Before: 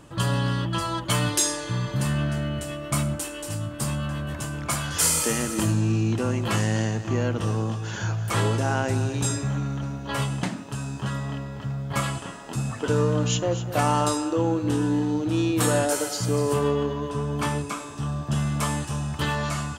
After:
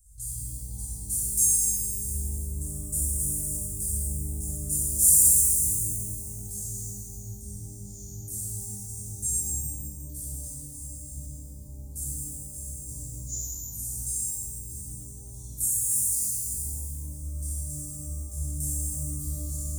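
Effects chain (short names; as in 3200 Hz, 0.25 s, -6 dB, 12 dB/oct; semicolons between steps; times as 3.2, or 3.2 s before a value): inverse Chebyshev band-stop 200–2900 Hz, stop band 60 dB; shimmer reverb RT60 2 s, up +12 st, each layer -8 dB, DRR -9.5 dB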